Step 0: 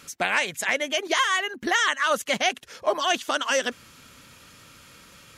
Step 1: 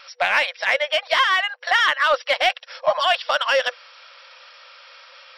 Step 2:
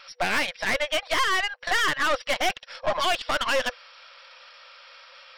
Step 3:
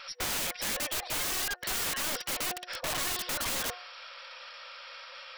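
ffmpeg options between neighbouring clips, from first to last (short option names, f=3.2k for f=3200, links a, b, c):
-filter_complex "[0:a]afftfilt=real='re*between(b*sr/4096,490,5700)':imag='im*between(b*sr/4096,490,5700)':win_size=4096:overlap=0.75,asplit=2[a][b];[b]asoftclip=type=tanh:threshold=-23dB,volume=-5dB[c];[a][c]amix=inputs=2:normalize=0,volume=2.5dB"
-af "aeval=exprs='(tanh(8.91*val(0)+0.6)-tanh(0.6))/8.91':c=same"
-af "bandreject=f=360.2:t=h:w=4,bandreject=f=720.4:t=h:w=4,bandreject=f=1.0806k:t=h:w=4,bandreject=f=1.4408k:t=h:w=4,bandreject=f=1.801k:t=h:w=4,aeval=exprs='(mod(31.6*val(0)+1,2)-1)/31.6':c=same,volume=2.5dB"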